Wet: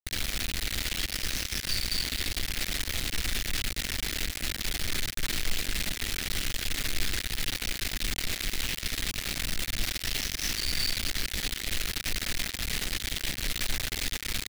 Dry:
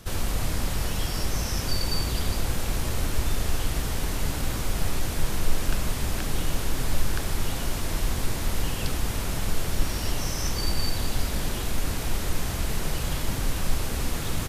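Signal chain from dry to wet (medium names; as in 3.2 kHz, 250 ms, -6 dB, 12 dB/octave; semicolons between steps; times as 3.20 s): bit crusher 4-bit; ten-band graphic EQ 125 Hz -6 dB, 500 Hz -4 dB, 1 kHz -9 dB, 2 kHz +8 dB, 4 kHz +7 dB; trim -8.5 dB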